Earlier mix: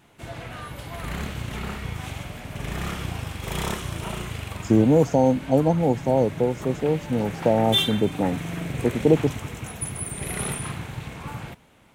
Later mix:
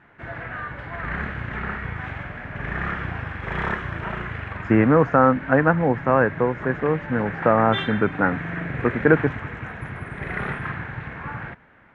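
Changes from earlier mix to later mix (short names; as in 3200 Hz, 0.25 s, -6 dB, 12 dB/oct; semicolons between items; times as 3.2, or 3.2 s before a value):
speech: remove brick-wall FIR band-stop 960–4200 Hz; master: add synth low-pass 1700 Hz, resonance Q 4.1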